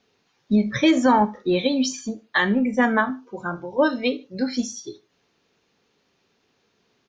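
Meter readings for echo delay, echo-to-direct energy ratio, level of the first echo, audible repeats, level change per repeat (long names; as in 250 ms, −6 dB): 74 ms, −22.5 dB, −23.0 dB, 2, −10.0 dB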